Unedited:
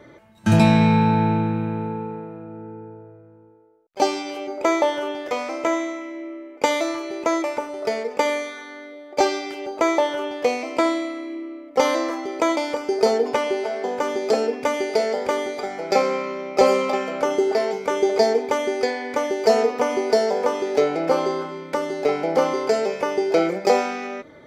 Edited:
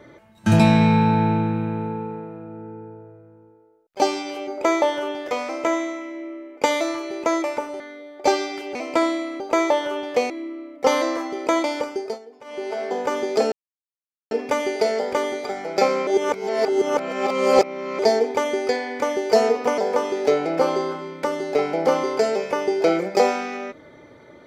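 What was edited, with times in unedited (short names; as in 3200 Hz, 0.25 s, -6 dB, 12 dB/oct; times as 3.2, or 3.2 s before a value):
7.8–8.73 cut
10.58–11.23 move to 9.68
12.74–13.75 dip -23 dB, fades 0.38 s
14.45 insert silence 0.79 s
16.21–18.13 reverse
19.92–20.28 cut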